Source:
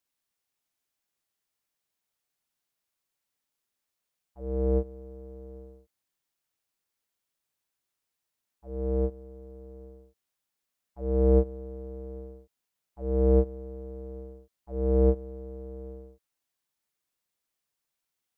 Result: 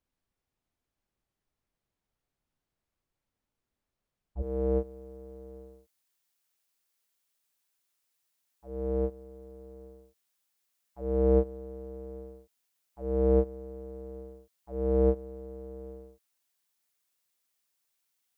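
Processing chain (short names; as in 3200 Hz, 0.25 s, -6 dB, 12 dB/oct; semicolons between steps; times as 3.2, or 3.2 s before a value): tilt -3.5 dB/oct, from 4.41 s +1.5 dB/oct; gain +1 dB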